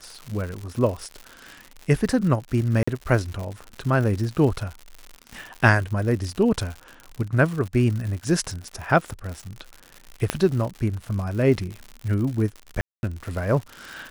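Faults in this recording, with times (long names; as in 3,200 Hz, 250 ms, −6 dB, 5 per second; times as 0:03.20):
surface crackle 130 per second −30 dBFS
0:02.83–0:02.88: drop-out 45 ms
0:10.30: click −6 dBFS
0:12.81–0:13.03: drop-out 221 ms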